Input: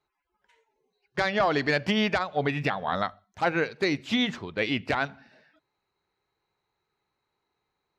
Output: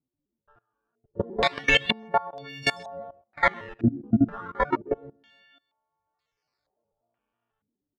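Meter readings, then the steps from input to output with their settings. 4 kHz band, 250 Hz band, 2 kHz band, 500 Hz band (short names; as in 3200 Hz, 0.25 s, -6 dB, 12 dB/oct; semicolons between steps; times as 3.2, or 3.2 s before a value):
+2.0 dB, +1.5 dB, +1.0 dB, -2.0 dB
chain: frequency quantiser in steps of 4 st; notches 50/100/150/200/250/300/350/400/450 Hz; level quantiser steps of 21 dB; decimation with a swept rate 12×, swing 160% 0.31 Hz; speakerphone echo 0.13 s, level -25 dB; stepped low-pass 2.1 Hz 270–5000 Hz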